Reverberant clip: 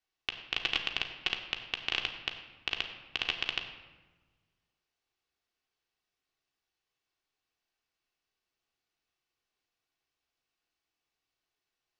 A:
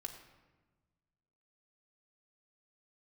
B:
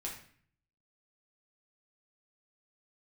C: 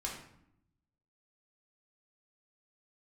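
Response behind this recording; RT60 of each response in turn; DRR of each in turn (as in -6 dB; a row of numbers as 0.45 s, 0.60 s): A; 1.3 s, 0.50 s, 0.75 s; 2.0 dB, -3.0 dB, -3.0 dB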